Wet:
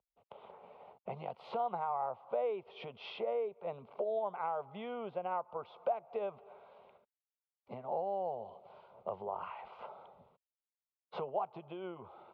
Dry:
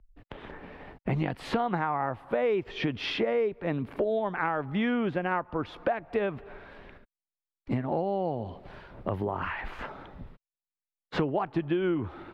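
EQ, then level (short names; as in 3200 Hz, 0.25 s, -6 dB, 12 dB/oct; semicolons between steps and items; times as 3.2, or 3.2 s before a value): HPF 330 Hz 12 dB/oct; air absorption 340 m; fixed phaser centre 720 Hz, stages 4; -3.0 dB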